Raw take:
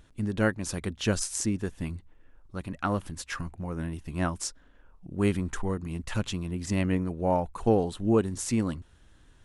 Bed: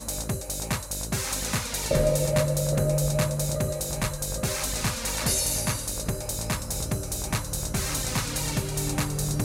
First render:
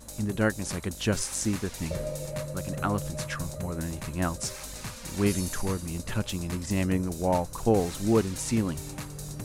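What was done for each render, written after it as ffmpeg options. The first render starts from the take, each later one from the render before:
ffmpeg -i in.wav -i bed.wav -filter_complex "[1:a]volume=-11dB[link_01];[0:a][link_01]amix=inputs=2:normalize=0" out.wav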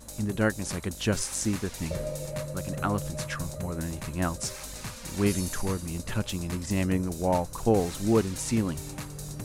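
ffmpeg -i in.wav -af anull out.wav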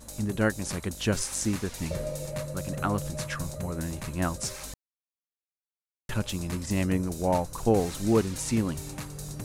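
ffmpeg -i in.wav -filter_complex "[0:a]asplit=3[link_01][link_02][link_03];[link_01]atrim=end=4.74,asetpts=PTS-STARTPTS,afade=type=out:start_time=4.736:duration=0.004:curve=hsin[link_04];[link_02]atrim=start=4.74:end=6.09,asetpts=PTS-STARTPTS,volume=0[link_05];[link_03]atrim=start=6.09,asetpts=PTS-STARTPTS,afade=type=in:duration=0.004:curve=hsin[link_06];[link_04][link_05][link_06]concat=n=3:v=0:a=1" out.wav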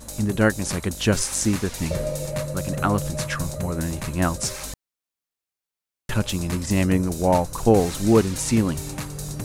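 ffmpeg -i in.wav -af "volume=6.5dB" out.wav

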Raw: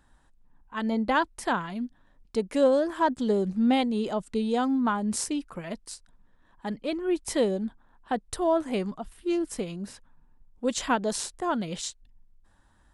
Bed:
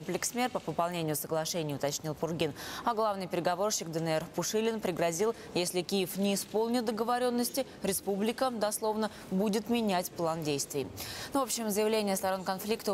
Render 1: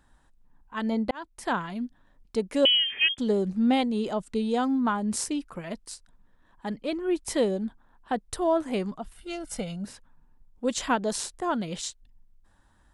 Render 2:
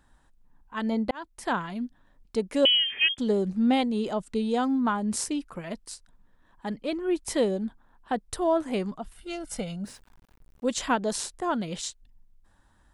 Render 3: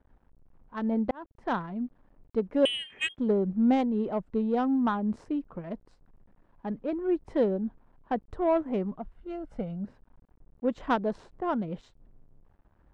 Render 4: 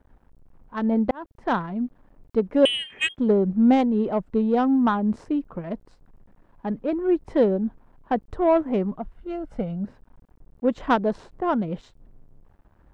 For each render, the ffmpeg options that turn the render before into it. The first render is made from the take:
ffmpeg -i in.wav -filter_complex "[0:a]asettb=1/sr,asplit=3[link_01][link_02][link_03];[link_01]atrim=end=2.654[link_04];[link_02]atrim=start=2.65:end=3.18,asetpts=PTS-STARTPTS,afade=type=in:duration=0.004:curve=qsin,afade=type=out:start_time=0.526:duration=0.004:curve=qsin,lowpass=frequency=3000:width_type=q:width=0.5098,lowpass=frequency=3000:width_type=q:width=0.6013,lowpass=frequency=3000:width_type=q:width=0.9,lowpass=frequency=3000:width_type=q:width=2.563,afreqshift=-3500[link_05];[link_03]atrim=start=3.176[link_06];[link_04][link_05]acrossfade=duration=0.004:curve1=hsin:curve2=qsin[link_07];[link_07][link_06]acrossfade=duration=0.004:curve1=qsin:curve2=hsin,asettb=1/sr,asplit=3[link_08][link_09][link_10];[link_08]atrim=end=9.164[link_11];[link_09]atrim=start=9.16:end=9.85,asetpts=PTS-STARTPTS,afade=type=in:duration=0.004:curve=qsin,afade=type=out:start_time=0.686:duration=0.004:curve=qsin,aecho=1:1:1.4:0.74,atrim=end_sample=30429[link_12];[link_10]atrim=start=9.846[link_13];[link_11][link_12]acrossfade=duration=0.004:curve1=hsin:curve2=qsin[link_14];[link_14][link_13]acrossfade=duration=0.004:curve1=qsin:curve2=hsin,asplit=2[link_15][link_16];[link_15]atrim=end=1.11,asetpts=PTS-STARTPTS,afade=type=out:start_time=1.106:duration=0.004:curve=hsin[link_17];[link_16]atrim=start=1.11,asetpts=PTS-STARTPTS,afade=type=in:duration=0.45[link_18];[link_17][link_18]concat=n=2:v=0:a=1" out.wav
ffmpeg -i in.wav -filter_complex "[0:a]asettb=1/sr,asplit=3[link_01][link_02][link_03];[link_01]atrim=end=9.864[link_04];[link_02]atrim=start=9.86:end=10.7,asetpts=PTS-STARTPTS,afade=type=in:duration=0.004:curve=qsin,afade=type=out:start_time=0.836:duration=0.004:curve=qsin,aeval=exprs='val(0)*gte(abs(val(0)),0.00188)':channel_layout=same[link_05];[link_03]atrim=start=10.696[link_06];[link_04][link_05]acrossfade=duration=0.004:curve1=hsin:curve2=qsin[link_07];[link_07][link_06]acrossfade=duration=0.004:curve1=qsin:curve2=hsin" out.wav
ffmpeg -i in.wav -af "acrusher=bits=9:mix=0:aa=0.000001,adynamicsmooth=sensitivity=0.5:basefreq=970" out.wav
ffmpeg -i in.wav -af "volume=6dB" out.wav

